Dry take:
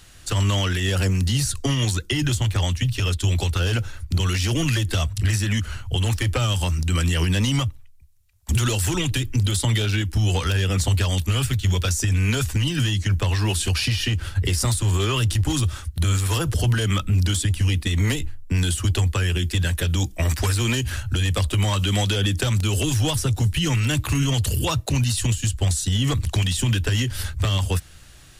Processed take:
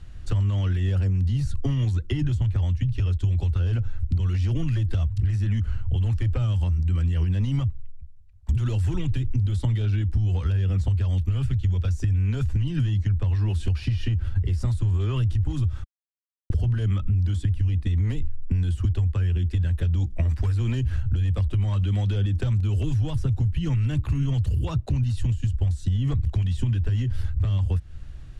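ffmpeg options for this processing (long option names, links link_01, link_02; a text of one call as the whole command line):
ffmpeg -i in.wav -filter_complex "[0:a]asplit=3[link_01][link_02][link_03];[link_01]atrim=end=15.84,asetpts=PTS-STARTPTS,afade=type=out:start_time=15.836:duration=0.004:curve=hsin[link_04];[link_02]atrim=start=15.84:end=16.5,asetpts=PTS-STARTPTS,volume=0[link_05];[link_03]atrim=start=16.5,asetpts=PTS-STARTPTS,afade=type=in:duration=0.004:curve=hsin[link_06];[link_04][link_05][link_06]concat=n=3:v=0:a=1,aemphasis=mode=reproduction:type=riaa,acompressor=threshold=-16dB:ratio=4,volume=-5.5dB" out.wav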